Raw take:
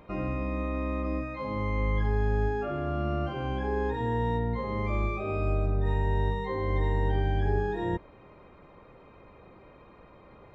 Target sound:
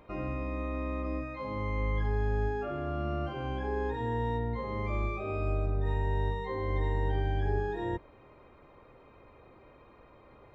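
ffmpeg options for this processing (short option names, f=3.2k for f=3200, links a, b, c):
-af "equalizer=f=180:w=7.1:g=-13,volume=-3dB"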